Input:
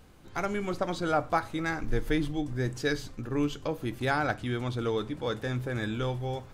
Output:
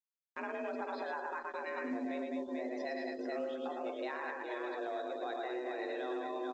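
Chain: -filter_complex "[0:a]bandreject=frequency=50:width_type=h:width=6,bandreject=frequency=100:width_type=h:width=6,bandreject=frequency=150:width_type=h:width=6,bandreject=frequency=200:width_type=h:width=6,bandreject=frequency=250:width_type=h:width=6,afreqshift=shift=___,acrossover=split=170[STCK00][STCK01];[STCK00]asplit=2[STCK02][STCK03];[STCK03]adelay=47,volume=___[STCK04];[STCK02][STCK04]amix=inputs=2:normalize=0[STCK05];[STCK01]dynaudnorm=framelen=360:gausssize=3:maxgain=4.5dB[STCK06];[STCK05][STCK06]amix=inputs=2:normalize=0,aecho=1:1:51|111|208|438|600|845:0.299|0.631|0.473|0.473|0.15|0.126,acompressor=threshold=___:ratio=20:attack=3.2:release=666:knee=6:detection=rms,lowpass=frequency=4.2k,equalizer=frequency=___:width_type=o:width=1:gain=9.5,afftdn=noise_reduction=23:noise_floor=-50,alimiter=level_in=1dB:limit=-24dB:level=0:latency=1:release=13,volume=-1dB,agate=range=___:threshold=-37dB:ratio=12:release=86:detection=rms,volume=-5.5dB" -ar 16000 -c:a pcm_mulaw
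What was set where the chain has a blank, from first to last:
240, -7.5dB, -26dB, 150, -59dB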